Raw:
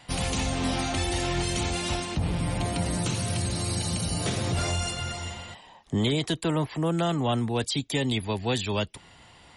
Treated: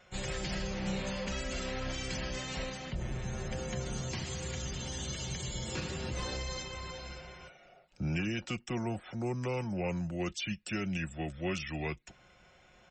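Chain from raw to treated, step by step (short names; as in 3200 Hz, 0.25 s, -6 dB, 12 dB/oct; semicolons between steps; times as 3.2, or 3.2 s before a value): comb 4.1 ms, depth 42%; speed mistake 45 rpm record played at 33 rpm; gain -9 dB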